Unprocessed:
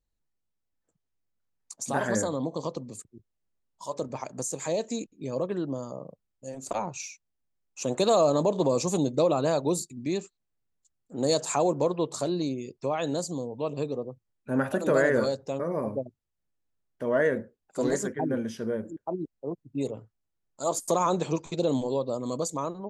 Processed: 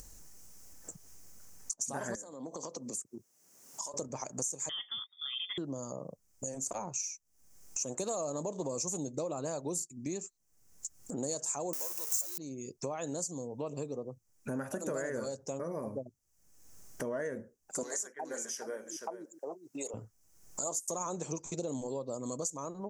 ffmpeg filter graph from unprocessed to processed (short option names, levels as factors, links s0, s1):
-filter_complex "[0:a]asettb=1/sr,asplit=3[s0][s1][s2];[s0]atrim=end=2.154[s3];[s1]atrim=start=2.15:end=3.94,asetpts=PTS-STARTPTS,afade=t=in:d=0.004:c=qsin,afade=t=out:st=1.786:d=0.004:c=qsin,highpass=220,acompressor=threshold=0.00447:ratio=3:attack=3.2:release=140:knee=1:detection=peak[s4];[s2]atrim=start=3.936[s5];[s3][s4]acrossfade=d=0.004:c1=hsin:c2=qsin[s6];[s6][s5]acrossfade=d=0.004:c1=qsin:c2=hsin,asettb=1/sr,asplit=3[s7][s8][s9];[s7]atrim=end=4.694[s10];[s8]atrim=start=4.69:end=5.58,asetpts=PTS-STARTPTS,afade=t=in:d=0.004:c=qsin,afade=t=out:st=0.886:d=0.004:c=qsin,equalizer=f=1700:w=6.9:g=13.5,lowpass=f=3100:t=q:w=0.5098,lowpass=f=3100:t=q:w=0.6013,lowpass=f=3100:t=q:w=0.9,lowpass=f=3100:t=q:w=2.563,afreqshift=-3700[s11];[s9]atrim=start=5.576[s12];[s10][s11]acrossfade=d=0.004:c1=hsin:c2=qsin[s13];[s13][s12]acrossfade=d=0.004:c1=qsin:c2=hsin,asettb=1/sr,asplit=3[s14][s15][s16];[s14]atrim=end=11.734[s17];[s15]atrim=start=11.73:end=12.38,asetpts=PTS-STARTPTS,afade=t=in:d=0.004:c=qsin,afade=t=out:st=0.646:d=0.004:c=qsin,aeval=exprs='val(0)+0.5*0.0335*sgn(val(0))':c=same,highpass=f=750:p=1,aemphasis=mode=production:type=riaa[s18];[s16]atrim=start=12.376[s19];[s17][s18]acrossfade=d=0.004:c1=hsin:c2=qsin[s20];[s20][s19]acrossfade=d=0.004:c1=qsin:c2=hsin,asettb=1/sr,asplit=3[s21][s22][s23];[s21]atrim=end=17.834[s24];[s22]atrim=start=17.83:end=19.94,asetpts=PTS-STARTPTS,afade=t=in:d=0.004:c=qsin,afade=t=out:st=2.106:d=0.004:c=qsin,highpass=710,aecho=1:1:420:0.237,atrim=end_sample=93051[s25];[s23]atrim=start=19.936[s26];[s24][s25]acrossfade=d=0.004:c1=hsin:c2=qsin[s27];[s27][s26]acrossfade=d=0.004:c1=qsin:c2=hsin,acompressor=mode=upward:threshold=0.00891:ratio=2.5,highshelf=f=4800:t=q:w=3:g=8,acompressor=threshold=0.00708:ratio=4,volume=1.88"